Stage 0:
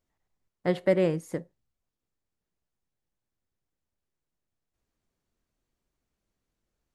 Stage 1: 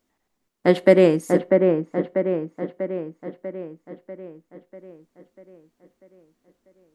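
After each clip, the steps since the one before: EQ curve 140 Hz 0 dB, 240 Hz +14 dB, 480 Hz +9 dB; dark delay 0.643 s, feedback 55%, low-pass 1700 Hz, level -3.5 dB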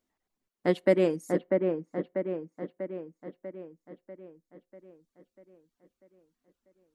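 reverb removal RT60 0.52 s; gain -8.5 dB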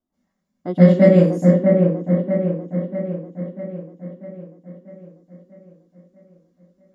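reverb RT60 0.45 s, pre-delay 0.121 s, DRR -12 dB; gain -12.5 dB

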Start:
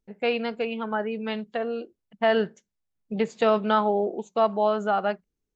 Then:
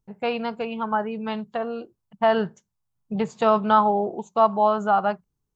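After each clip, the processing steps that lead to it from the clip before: graphic EQ 125/250/500/1000/2000/4000 Hz +11/-4/-5/+8/-7/-3 dB; gain +2.5 dB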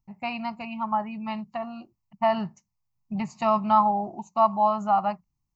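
fixed phaser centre 2300 Hz, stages 8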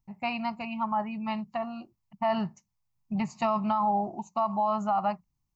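limiter -18 dBFS, peak gain reduction 10.5 dB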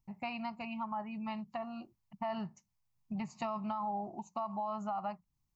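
compressor 2:1, threshold -40 dBFS, peak gain reduction 9.5 dB; gain -1.5 dB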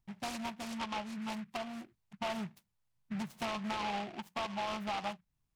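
noise-modulated delay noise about 1700 Hz, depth 0.11 ms

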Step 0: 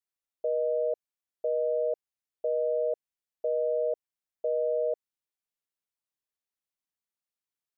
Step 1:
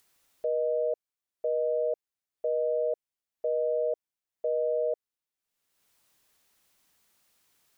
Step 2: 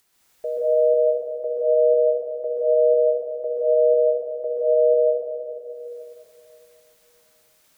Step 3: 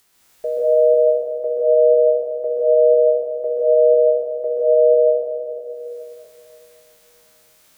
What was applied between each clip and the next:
upward compressor, threshold -50 dBFS
plate-style reverb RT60 3 s, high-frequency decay 0.9×, pre-delay 0.115 s, DRR -7 dB; gain +1.5 dB
spectral trails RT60 0.58 s; gain +4 dB

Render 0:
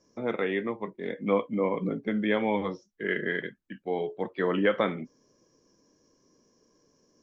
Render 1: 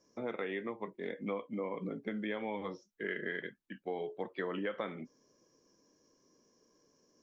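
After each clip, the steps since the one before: compressor 5:1, threshold -30 dBFS, peak gain reduction 10.5 dB; low shelf 180 Hz -6.5 dB; gain -3 dB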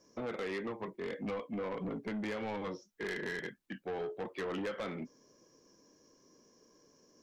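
soft clip -38.5 dBFS, distortion -9 dB; gain +5 dB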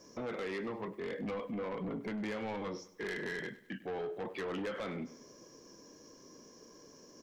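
limiter -43 dBFS, peak gain reduction 9.5 dB; feedback echo 0.1 s, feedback 44%, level -17 dB; gain +8.5 dB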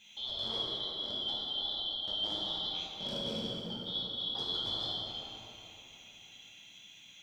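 four-band scrambler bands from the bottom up 2413; plate-style reverb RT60 3.4 s, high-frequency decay 0.5×, DRR -5.5 dB; gain -3 dB

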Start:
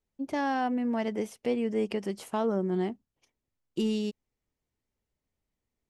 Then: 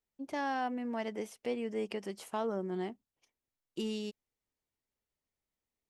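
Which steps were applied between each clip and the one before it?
low shelf 320 Hz -8 dB; gain -3.5 dB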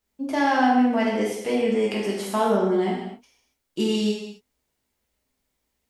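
non-linear reverb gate 0.31 s falling, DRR -4.5 dB; gain +8.5 dB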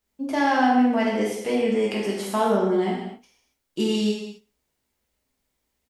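feedback echo 61 ms, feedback 40%, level -21 dB

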